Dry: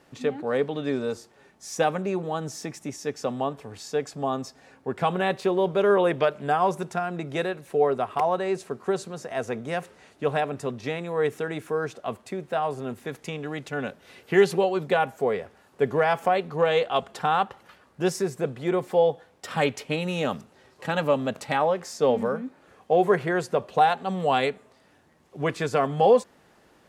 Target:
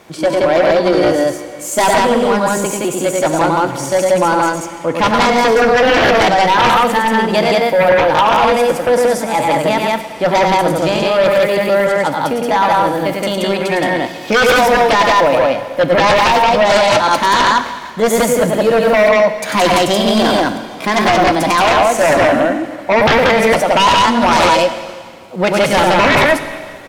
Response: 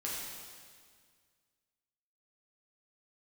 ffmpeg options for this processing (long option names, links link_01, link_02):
-filter_complex "[0:a]aecho=1:1:102|174.9:0.631|0.891,aeval=exprs='0.668*sin(PI/2*5.01*val(0)/0.668)':channel_layout=same,asetrate=55563,aresample=44100,atempo=0.793701,asplit=2[link_01][link_02];[1:a]atrim=start_sample=2205[link_03];[link_02][link_03]afir=irnorm=-1:irlink=0,volume=-9.5dB[link_04];[link_01][link_04]amix=inputs=2:normalize=0,volume=-5.5dB"